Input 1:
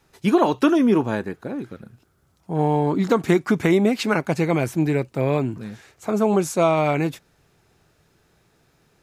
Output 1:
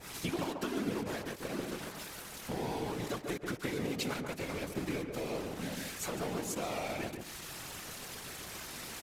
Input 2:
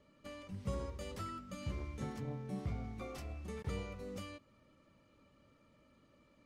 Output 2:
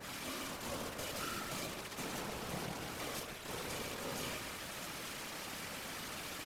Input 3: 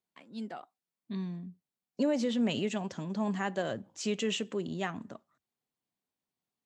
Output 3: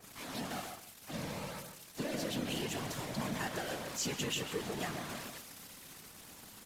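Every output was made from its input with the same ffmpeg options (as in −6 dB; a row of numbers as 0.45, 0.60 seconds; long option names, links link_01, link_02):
-filter_complex "[0:a]aeval=exprs='val(0)+0.5*0.0251*sgn(val(0))':channel_layout=same,highpass=160,highshelf=frequency=6600:gain=2,acompressor=threshold=-29dB:ratio=6,aeval=exprs='val(0)*gte(abs(val(0)),0.0188)':channel_layout=same,flanger=delay=0.5:depth=9.3:regen=-76:speed=0.6:shape=sinusoidal,afftfilt=real='hypot(re,im)*cos(2*PI*random(0))':imag='hypot(re,im)*sin(2*PI*random(1))':win_size=512:overlap=0.75,asplit=2[link_01][link_02];[link_02]adelay=141,lowpass=frequency=1200:poles=1,volume=-3.5dB,asplit=2[link_03][link_04];[link_04]adelay=141,lowpass=frequency=1200:poles=1,volume=0.22,asplit=2[link_05][link_06];[link_06]adelay=141,lowpass=frequency=1200:poles=1,volume=0.22[link_07];[link_01][link_03][link_05][link_07]amix=inputs=4:normalize=0,aresample=32000,aresample=44100,adynamicequalizer=threshold=0.00126:dfrequency=1700:dqfactor=0.7:tfrequency=1700:tqfactor=0.7:attack=5:release=100:ratio=0.375:range=2.5:mode=boostabove:tftype=highshelf,volume=4dB"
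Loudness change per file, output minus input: −17.5, +2.0, −5.0 LU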